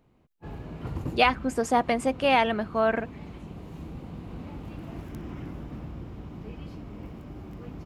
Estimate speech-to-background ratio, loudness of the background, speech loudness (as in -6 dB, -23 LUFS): 15.5 dB, -40.5 LUFS, -25.0 LUFS